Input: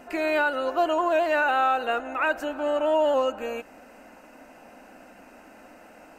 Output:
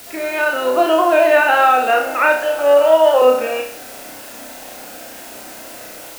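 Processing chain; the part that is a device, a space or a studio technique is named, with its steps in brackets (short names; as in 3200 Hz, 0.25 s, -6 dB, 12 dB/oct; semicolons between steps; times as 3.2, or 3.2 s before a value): 2.36–3.22 inverse Chebyshev high-pass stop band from 190 Hz, stop band 40 dB; dictaphone (BPF 310–3700 Hz; AGC gain up to 10 dB; wow and flutter; white noise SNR 22 dB); bell 1000 Hz -3.5 dB 0.94 oct; flutter echo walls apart 5.4 m, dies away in 0.45 s; gain +1.5 dB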